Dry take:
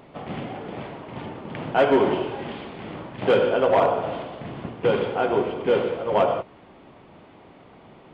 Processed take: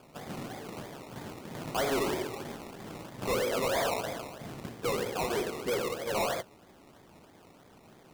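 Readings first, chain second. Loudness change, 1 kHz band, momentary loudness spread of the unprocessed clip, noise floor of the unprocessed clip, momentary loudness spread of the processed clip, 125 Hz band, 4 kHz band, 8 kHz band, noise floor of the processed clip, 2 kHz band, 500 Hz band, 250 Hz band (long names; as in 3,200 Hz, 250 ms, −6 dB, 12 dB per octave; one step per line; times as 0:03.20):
−10.5 dB, −9.5 dB, 17 LU, −50 dBFS, 14 LU, −7.5 dB, −2.0 dB, can't be measured, −57 dBFS, −5.5 dB, −11.0 dB, −9.5 dB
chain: sample-and-hold swept by an LFO 22×, swing 60% 3.1 Hz
hard clipping −19 dBFS, distortion −10 dB
level −7.5 dB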